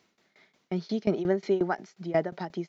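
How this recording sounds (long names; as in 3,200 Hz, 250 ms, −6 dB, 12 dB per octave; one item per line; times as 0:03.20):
tremolo saw down 5.6 Hz, depth 90%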